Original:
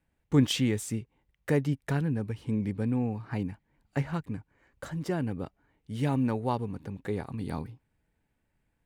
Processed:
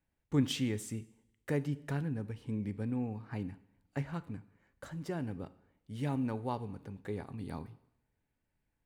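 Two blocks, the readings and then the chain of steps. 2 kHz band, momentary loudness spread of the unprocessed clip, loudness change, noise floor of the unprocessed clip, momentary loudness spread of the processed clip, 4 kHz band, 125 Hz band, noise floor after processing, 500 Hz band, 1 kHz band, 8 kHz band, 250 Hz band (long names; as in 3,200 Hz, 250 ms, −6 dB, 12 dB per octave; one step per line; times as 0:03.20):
−7.0 dB, 13 LU, −6.5 dB, −77 dBFS, 14 LU, −7.0 dB, −7.0 dB, −83 dBFS, −7.0 dB, −6.5 dB, −7.0 dB, −6.5 dB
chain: coupled-rooms reverb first 0.72 s, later 1.8 s, from −25 dB, DRR 14 dB
level −7 dB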